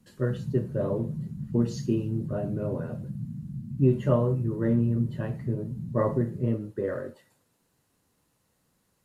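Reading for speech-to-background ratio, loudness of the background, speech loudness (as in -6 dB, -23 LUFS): 8.0 dB, -37.0 LUFS, -29.0 LUFS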